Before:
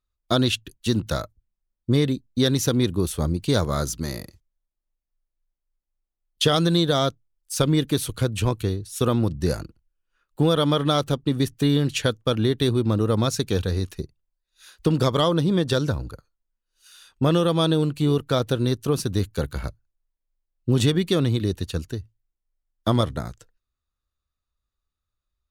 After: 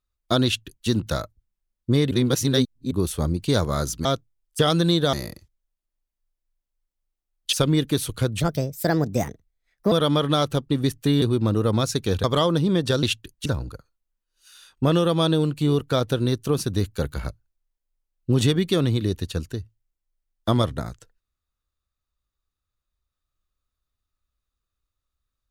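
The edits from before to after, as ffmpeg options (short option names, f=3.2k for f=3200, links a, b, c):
-filter_complex "[0:a]asplit=13[a][b][c][d][e][f][g][h][i][j][k][l][m];[a]atrim=end=2.112[n];[b]atrim=start=2.108:end=2.912,asetpts=PTS-STARTPTS,areverse[o];[c]atrim=start=2.908:end=4.052[p];[d]atrim=start=6.988:end=7.532[q];[e]atrim=start=6.448:end=6.992[r];[f]atrim=start=4.048:end=6.452[s];[g]atrim=start=7.528:end=8.404[t];[h]atrim=start=8.4:end=10.48,asetpts=PTS-STARTPTS,asetrate=60417,aresample=44100[u];[i]atrim=start=10.476:end=11.782[v];[j]atrim=start=12.658:end=13.682[w];[k]atrim=start=15.058:end=15.852[x];[l]atrim=start=0.448:end=0.882[y];[m]atrim=start=15.848[z];[n][o]acrossfade=d=0.004:c1=hsin:c2=hsin[aa];[aa][p]acrossfade=d=0.004:c1=hsin:c2=hsin[ab];[ab][q]acrossfade=d=0.004:c1=hsin:c2=hsin[ac];[ac][r]acrossfade=d=0.004:c1=hsin:c2=hsin[ad];[ad][s]acrossfade=d=0.004:c1=hsin:c2=hsin[ae];[ae][t]acrossfade=d=0.004:c1=hsin:c2=hsin[af];[af][u]acrossfade=d=0.004:c1=hsin:c2=hsin[ag];[ag][v]acrossfade=d=0.004:c1=hsin:c2=hsin[ah];[ah][w]acrossfade=d=0.004:c1=hsin:c2=hsin[ai];[ai][x]acrossfade=d=0.004:c1=hsin:c2=hsin[aj];[aj][y]acrossfade=d=0.004:c1=hsin:c2=hsin[ak];[ak][z]acrossfade=d=0.004:c1=hsin:c2=hsin"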